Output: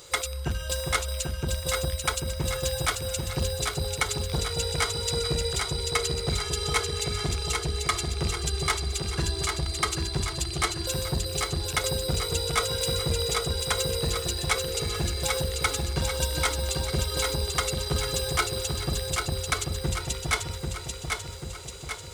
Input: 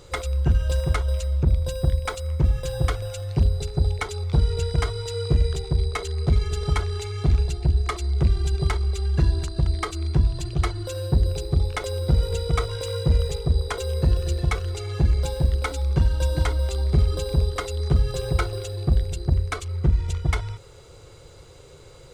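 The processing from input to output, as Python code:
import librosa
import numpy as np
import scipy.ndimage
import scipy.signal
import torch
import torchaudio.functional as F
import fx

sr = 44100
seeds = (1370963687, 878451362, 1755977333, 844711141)

y = fx.tilt_eq(x, sr, slope=3.0)
y = fx.echo_feedback(y, sr, ms=790, feedback_pct=56, wet_db=-4.0)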